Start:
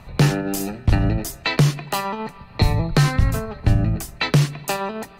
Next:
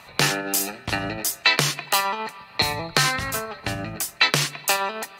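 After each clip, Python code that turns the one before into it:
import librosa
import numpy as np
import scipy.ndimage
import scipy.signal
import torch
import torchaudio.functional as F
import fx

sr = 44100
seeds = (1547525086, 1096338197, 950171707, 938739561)

y = fx.highpass(x, sr, hz=1500.0, slope=6)
y = y * librosa.db_to_amplitude(7.0)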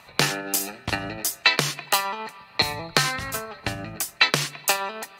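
y = fx.transient(x, sr, attack_db=5, sustain_db=1)
y = y * librosa.db_to_amplitude(-4.0)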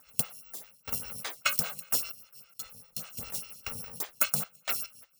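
y = fx.bit_reversed(x, sr, seeds[0], block=128)
y = fx.step_gate(y, sr, bpm=71, pattern='x...xxxxxx.', floor_db=-12.0, edge_ms=4.5)
y = fx.stagger_phaser(y, sr, hz=5.0)
y = y * librosa.db_to_amplitude(-4.5)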